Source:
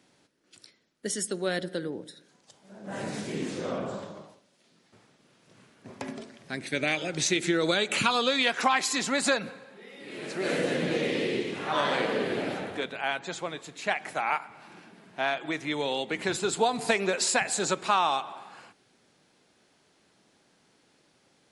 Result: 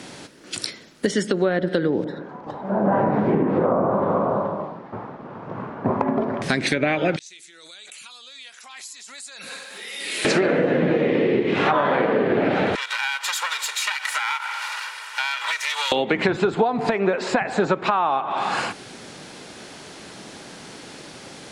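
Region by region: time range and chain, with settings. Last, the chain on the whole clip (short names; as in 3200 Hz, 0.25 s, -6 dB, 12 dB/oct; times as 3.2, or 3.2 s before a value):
2.04–6.42 synth low-pass 1000 Hz, resonance Q 2.2 + echo 0.425 s -12 dB
7.16–10.25 pre-emphasis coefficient 0.97 + flipped gate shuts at -33 dBFS, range -33 dB + backwards sustainer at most 34 dB/s
12.75–15.92 minimum comb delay 2.1 ms + HPF 1000 Hz 24 dB/oct + compressor 8:1, threshold -46 dBFS
whole clip: treble ducked by the level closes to 1600 Hz, closed at -25.5 dBFS; compressor 16:1, threshold -41 dBFS; maximiser +31 dB; gain -6 dB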